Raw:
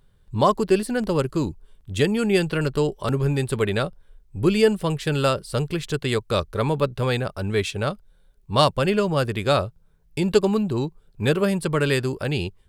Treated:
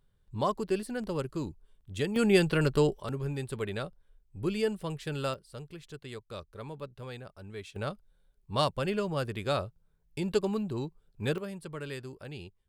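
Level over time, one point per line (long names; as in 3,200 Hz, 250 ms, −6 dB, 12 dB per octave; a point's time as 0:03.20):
−11 dB
from 0:02.16 −3 dB
from 0:03.00 −12 dB
from 0:05.34 −19.5 dB
from 0:07.76 −10 dB
from 0:11.38 −18 dB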